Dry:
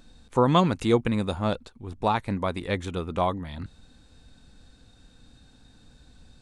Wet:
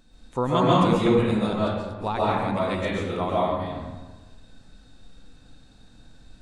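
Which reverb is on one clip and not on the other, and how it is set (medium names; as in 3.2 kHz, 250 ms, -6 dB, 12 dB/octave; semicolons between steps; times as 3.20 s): algorithmic reverb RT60 1.3 s, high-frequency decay 0.55×, pre-delay 95 ms, DRR -7 dB; trim -5 dB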